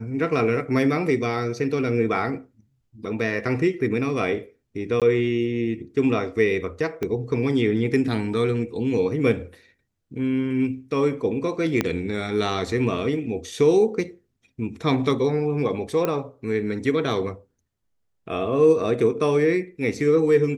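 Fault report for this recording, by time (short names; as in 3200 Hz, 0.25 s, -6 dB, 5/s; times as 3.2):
5–5.02 gap 17 ms
7.03 pop -15 dBFS
11.81 pop -7 dBFS
16.05 pop -11 dBFS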